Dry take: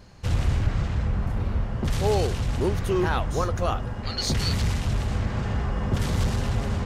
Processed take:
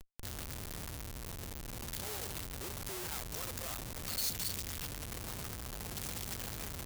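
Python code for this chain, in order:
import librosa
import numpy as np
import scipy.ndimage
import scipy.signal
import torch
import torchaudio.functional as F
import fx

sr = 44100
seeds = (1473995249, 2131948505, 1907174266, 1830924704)

y = fx.schmitt(x, sr, flips_db=-40.5)
y = librosa.effects.preemphasis(y, coef=0.8, zi=[0.0])
y = y * 10.0 ** (-6.5 / 20.0)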